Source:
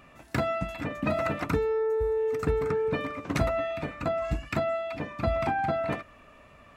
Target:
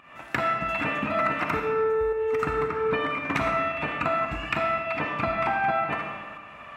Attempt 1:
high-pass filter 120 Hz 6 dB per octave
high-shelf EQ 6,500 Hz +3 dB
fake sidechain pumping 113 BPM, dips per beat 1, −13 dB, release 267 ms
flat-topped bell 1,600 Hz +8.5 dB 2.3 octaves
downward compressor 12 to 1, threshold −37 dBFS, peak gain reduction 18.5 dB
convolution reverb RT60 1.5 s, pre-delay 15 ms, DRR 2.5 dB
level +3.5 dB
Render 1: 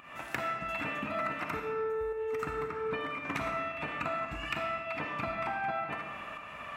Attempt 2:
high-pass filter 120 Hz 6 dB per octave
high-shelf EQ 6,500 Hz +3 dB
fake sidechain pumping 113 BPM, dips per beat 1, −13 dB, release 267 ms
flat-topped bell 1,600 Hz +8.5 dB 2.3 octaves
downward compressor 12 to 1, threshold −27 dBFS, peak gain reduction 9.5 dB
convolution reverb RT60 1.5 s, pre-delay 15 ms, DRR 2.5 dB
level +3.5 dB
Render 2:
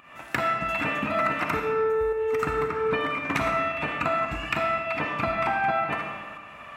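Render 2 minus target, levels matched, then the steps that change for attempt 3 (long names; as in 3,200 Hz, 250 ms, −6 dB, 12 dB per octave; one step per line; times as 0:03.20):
8,000 Hz band +4.0 dB
change: high-shelf EQ 6,500 Hz −5.5 dB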